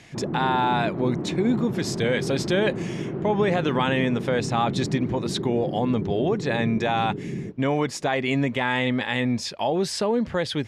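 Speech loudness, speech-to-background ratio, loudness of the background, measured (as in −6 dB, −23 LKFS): −25.0 LKFS, 5.5 dB, −30.5 LKFS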